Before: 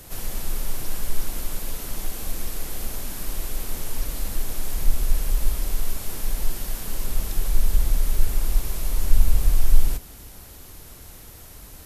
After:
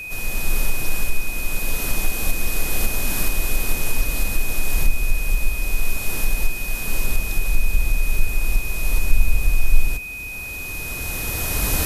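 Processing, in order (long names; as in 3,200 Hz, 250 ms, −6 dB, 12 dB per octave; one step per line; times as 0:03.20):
camcorder AGC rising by 12 dB per second
steady tone 2,500 Hz −30 dBFS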